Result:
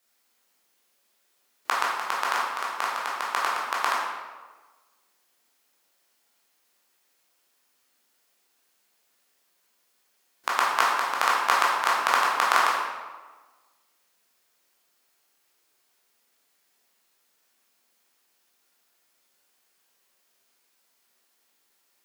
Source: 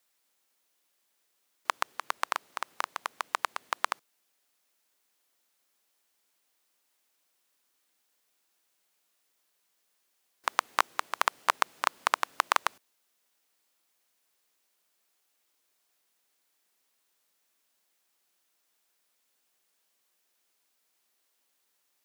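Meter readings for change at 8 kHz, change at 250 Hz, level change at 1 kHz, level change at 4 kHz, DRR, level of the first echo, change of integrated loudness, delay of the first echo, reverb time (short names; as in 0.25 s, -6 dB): +5.0 dB, +7.0 dB, +7.0 dB, +6.0 dB, -6.0 dB, none, +6.5 dB, none, 1.3 s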